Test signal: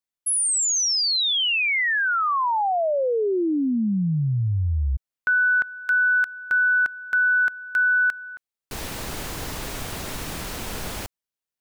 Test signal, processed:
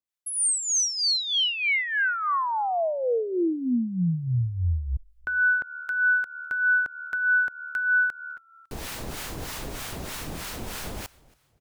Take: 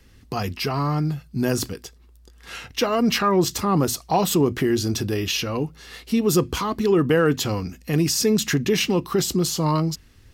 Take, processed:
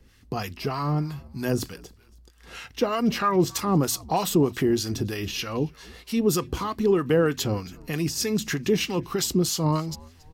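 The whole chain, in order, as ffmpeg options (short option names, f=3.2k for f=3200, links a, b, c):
-filter_complex "[0:a]asplit=3[a][b][c];[b]adelay=277,afreqshift=-75,volume=-23.5dB[d];[c]adelay=554,afreqshift=-150,volume=-32.6dB[e];[a][d][e]amix=inputs=3:normalize=0,acrossover=split=830[f][g];[f]aeval=exprs='val(0)*(1-0.7/2+0.7/2*cos(2*PI*3.2*n/s))':c=same[h];[g]aeval=exprs='val(0)*(1-0.7/2-0.7/2*cos(2*PI*3.2*n/s))':c=same[i];[h][i]amix=inputs=2:normalize=0"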